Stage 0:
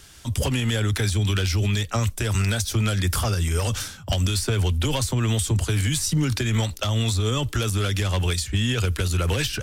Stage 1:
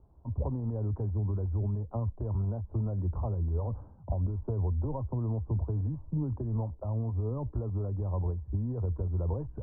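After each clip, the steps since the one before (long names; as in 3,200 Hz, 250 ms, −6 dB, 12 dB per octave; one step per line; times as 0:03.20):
Chebyshev low-pass filter 1,000 Hz, order 5
parametric band 63 Hz +6.5 dB 0.68 octaves
level −9 dB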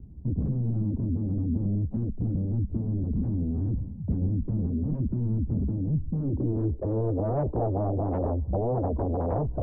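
in parallel at −7 dB: sine wavefolder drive 15 dB, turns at −21 dBFS
on the sum: low-pass filter sweep 220 Hz → 650 Hz, 0:06.10–0:07.37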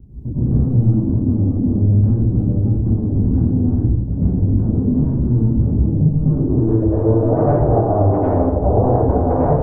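dense smooth reverb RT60 0.97 s, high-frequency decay 0.95×, pre-delay 85 ms, DRR −10 dB
level +2.5 dB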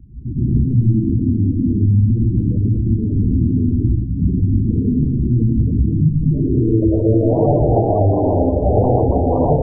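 gate on every frequency bin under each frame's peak −20 dB strong
echo through a band-pass that steps 104 ms, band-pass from 360 Hz, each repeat 0.7 octaves, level −8.5 dB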